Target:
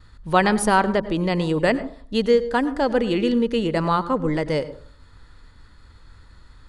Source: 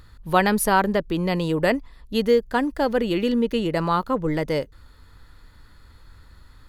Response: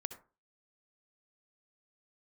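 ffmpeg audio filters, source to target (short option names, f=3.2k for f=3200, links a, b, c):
-filter_complex "[0:a]agate=range=-33dB:threshold=-47dB:ratio=3:detection=peak,asplit=2[a][b];[1:a]atrim=start_sample=2205,asetrate=30429,aresample=44100[c];[b][c]afir=irnorm=-1:irlink=0,volume=-0.5dB[d];[a][d]amix=inputs=2:normalize=0,aresample=22050,aresample=44100,volume=-4.5dB"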